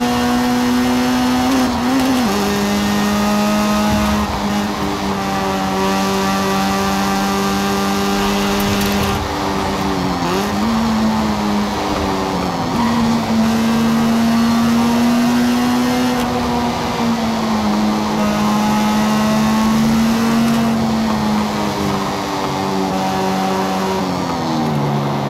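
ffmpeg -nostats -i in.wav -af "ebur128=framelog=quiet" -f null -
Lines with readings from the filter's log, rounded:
Integrated loudness:
  I:         -16.2 LUFS
  Threshold: -26.2 LUFS
Loudness range:
  LRA:         2.6 LU
  Threshold: -36.2 LUFS
  LRA low:   -17.4 LUFS
  LRA high:  -14.8 LUFS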